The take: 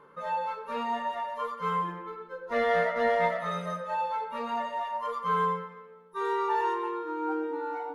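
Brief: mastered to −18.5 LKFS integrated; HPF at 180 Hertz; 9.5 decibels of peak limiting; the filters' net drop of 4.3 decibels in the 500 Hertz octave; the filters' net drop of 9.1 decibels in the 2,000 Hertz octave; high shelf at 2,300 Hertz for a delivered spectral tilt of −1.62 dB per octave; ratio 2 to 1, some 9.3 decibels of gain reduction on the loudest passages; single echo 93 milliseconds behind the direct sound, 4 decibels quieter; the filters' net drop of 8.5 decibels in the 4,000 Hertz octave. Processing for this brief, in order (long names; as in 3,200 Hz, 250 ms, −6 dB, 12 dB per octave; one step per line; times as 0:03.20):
high-pass filter 180 Hz
parametric band 500 Hz −4.5 dB
parametric band 2,000 Hz −8 dB
high-shelf EQ 2,300 Hz −4 dB
parametric band 4,000 Hz −4 dB
downward compressor 2 to 1, threshold −44 dBFS
brickwall limiter −39.5 dBFS
single-tap delay 93 ms −4 dB
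level +27 dB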